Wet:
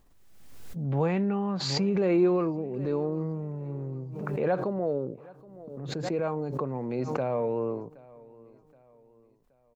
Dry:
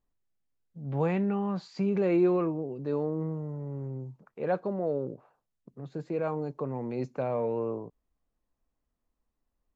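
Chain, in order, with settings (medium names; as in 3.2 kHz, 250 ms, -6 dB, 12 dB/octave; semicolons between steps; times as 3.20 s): feedback delay 773 ms, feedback 41%, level -22.5 dB; swell ahead of each attack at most 38 dB/s; trim +1 dB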